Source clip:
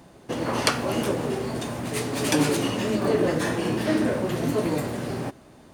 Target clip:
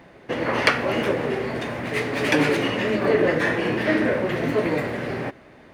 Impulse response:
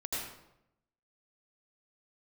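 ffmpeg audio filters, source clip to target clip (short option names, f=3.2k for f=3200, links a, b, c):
-af "equalizer=f=500:t=o:w=1:g=5,equalizer=f=2k:t=o:w=1:g=12,equalizer=f=8k:t=o:w=1:g=-7,equalizer=f=16k:t=o:w=1:g=-9,volume=-1dB"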